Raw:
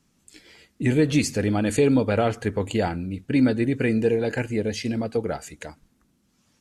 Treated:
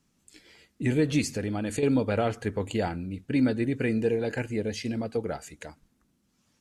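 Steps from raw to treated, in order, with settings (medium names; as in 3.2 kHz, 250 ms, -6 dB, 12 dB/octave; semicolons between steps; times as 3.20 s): 1.21–1.83 s: compression, threshold -22 dBFS, peak gain reduction 7.5 dB; trim -4.5 dB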